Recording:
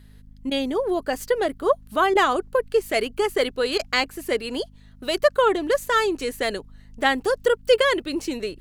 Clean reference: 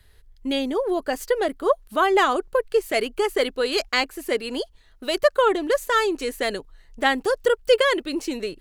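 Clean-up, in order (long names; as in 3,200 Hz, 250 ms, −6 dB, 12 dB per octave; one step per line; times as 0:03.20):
hum removal 51.5 Hz, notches 5
repair the gap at 0:00.50/0:02.14/0:03.78, 12 ms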